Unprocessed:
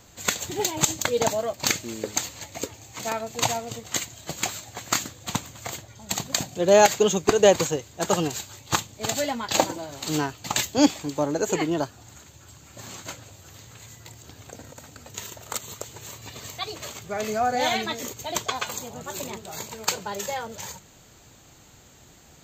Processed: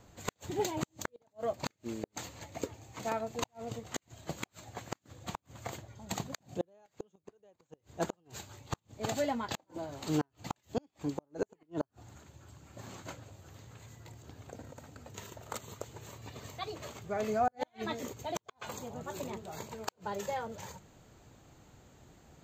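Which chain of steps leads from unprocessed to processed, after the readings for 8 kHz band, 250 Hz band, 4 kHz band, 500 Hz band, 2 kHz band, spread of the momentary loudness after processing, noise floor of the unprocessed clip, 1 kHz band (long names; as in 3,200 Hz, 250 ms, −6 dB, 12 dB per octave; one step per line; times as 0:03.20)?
−19.0 dB, −11.0 dB, −17.0 dB, −13.5 dB, −14.5 dB, 19 LU, −52 dBFS, −11.0 dB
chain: high-shelf EQ 2,000 Hz −11.5 dB
gate with flip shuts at −16 dBFS, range −42 dB
level −3.5 dB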